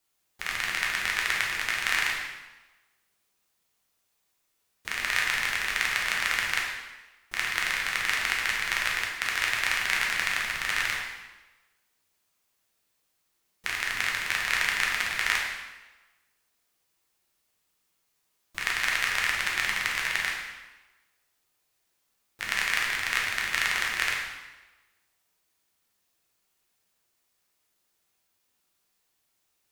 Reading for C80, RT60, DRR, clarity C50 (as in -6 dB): 4.5 dB, 1.2 s, -3.0 dB, 2.0 dB